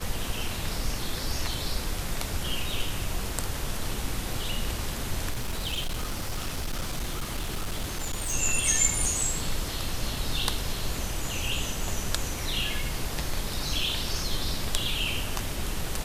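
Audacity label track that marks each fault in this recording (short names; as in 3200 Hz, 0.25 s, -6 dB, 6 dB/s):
5.300000	8.340000	clipped -26 dBFS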